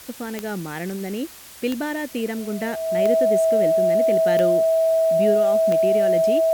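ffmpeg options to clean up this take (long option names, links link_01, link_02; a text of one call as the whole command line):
ffmpeg -i in.wav -af "adeclick=threshold=4,bandreject=frequency=650:width=30,afwtdn=0.0079" out.wav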